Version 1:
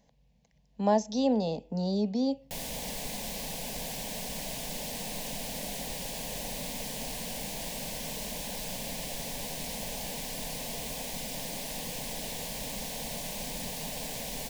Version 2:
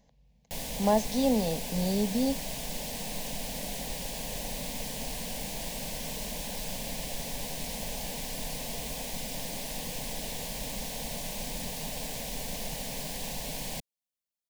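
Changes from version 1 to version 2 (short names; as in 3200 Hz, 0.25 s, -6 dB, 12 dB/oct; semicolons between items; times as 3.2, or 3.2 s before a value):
background: entry -2.00 s; master: add low shelf 73 Hz +6 dB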